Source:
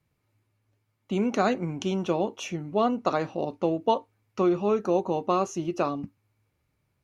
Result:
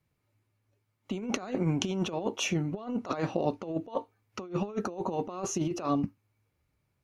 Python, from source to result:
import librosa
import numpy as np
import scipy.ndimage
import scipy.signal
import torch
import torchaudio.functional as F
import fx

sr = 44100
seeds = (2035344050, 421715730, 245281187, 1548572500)

y = fx.noise_reduce_blind(x, sr, reduce_db=8)
y = fx.over_compress(y, sr, threshold_db=-30.0, ratio=-0.5)